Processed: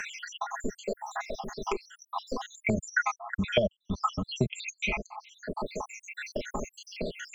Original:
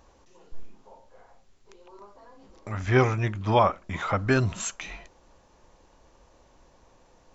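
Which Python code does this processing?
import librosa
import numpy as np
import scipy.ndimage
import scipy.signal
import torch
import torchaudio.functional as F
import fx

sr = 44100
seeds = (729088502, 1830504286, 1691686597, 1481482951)

y = fx.spec_dropout(x, sr, seeds[0], share_pct=84)
y = y + 0.82 * np.pad(y, (int(4.8 * sr / 1000.0), 0))[:len(y)]
y = fx.band_squash(y, sr, depth_pct=100)
y = F.gain(torch.from_numpy(y), 8.0).numpy()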